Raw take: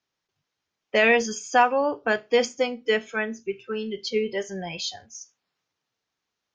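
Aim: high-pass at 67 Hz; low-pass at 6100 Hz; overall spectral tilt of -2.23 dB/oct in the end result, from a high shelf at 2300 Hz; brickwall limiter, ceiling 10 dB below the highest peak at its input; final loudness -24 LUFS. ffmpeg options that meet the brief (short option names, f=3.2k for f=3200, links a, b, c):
-af "highpass=67,lowpass=6.1k,highshelf=f=2.3k:g=7,volume=3dB,alimiter=limit=-11.5dB:level=0:latency=1"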